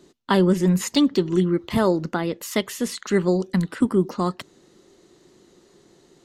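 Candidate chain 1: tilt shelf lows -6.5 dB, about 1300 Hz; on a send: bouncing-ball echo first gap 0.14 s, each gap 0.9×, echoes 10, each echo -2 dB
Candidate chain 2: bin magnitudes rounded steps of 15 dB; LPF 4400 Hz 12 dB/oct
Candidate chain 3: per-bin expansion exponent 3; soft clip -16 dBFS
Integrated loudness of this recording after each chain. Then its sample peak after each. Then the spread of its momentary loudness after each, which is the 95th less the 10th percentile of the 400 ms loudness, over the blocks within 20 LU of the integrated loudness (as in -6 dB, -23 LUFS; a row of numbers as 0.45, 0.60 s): -21.5, -22.5, -29.5 LUFS; -3.5, -7.0, -16.5 dBFS; 11, 8, 12 LU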